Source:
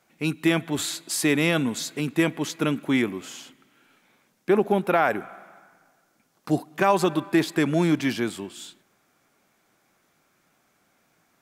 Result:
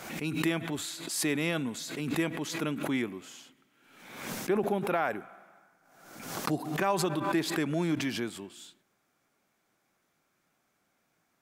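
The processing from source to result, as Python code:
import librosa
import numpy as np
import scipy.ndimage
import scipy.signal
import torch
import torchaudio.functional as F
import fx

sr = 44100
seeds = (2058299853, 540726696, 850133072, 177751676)

y = fx.pre_swell(x, sr, db_per_s=58.0)
y = F.gain(torch.from_numpy(y), -8.5).numpy()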